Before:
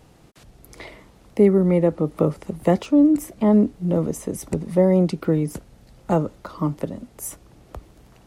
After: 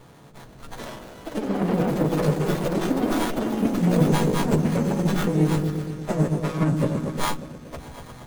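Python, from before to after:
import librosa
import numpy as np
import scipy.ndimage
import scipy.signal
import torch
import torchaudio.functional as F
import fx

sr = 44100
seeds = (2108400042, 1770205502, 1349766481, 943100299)

y = fx.freq_snap(x, sr, grid_st=2)
y = scipy.signal.sosfilt(scipy.signal.butter(2, 11000.0, 'lowpass', fs=sr, output='sos'), y)
y = fx.over_compress(y, sr, threshold_db=-22.0, ratio=-0.5)
y = fx.peak_eq(y, sr, hz=140.0, db=5.0, octaves=0.45)
y = fx.notch_comb(y, sr, f0_hz=830.0)
y = fx.echo_opening(y, sr, ms=118, hz=400, octaves=1, feedback_pct=70, wet_db=-3)
y = fx.echo_pitch(y, sr, ms=353, semitones=7, count=3, db_per_echo=-6.0)
y = fx.high_shelf(y, sr, hz=8200.0, db=7.5)
y = fx.running_max(y, sr, window=17)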